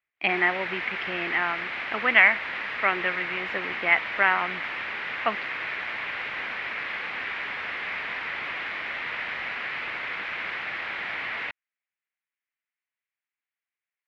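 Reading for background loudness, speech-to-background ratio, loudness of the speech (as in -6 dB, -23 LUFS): -30.5 LUFS, 6.0 dB, -24.5 LUFS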